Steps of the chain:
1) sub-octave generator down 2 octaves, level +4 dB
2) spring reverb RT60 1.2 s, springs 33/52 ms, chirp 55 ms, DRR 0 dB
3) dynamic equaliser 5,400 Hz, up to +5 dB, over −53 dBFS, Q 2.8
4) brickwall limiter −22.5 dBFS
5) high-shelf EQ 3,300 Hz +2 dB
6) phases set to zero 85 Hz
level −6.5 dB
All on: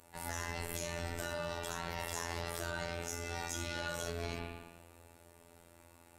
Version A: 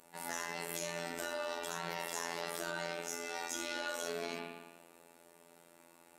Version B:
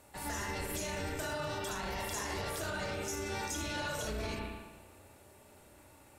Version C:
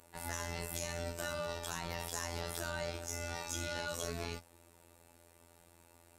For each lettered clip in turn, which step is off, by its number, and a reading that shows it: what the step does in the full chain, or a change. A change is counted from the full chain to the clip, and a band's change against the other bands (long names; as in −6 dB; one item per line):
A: 1, 125 Hz band −12.5 dB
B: 6, 250 Hz band +2.5 dB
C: 2, change in momentary loudness spread −11 LU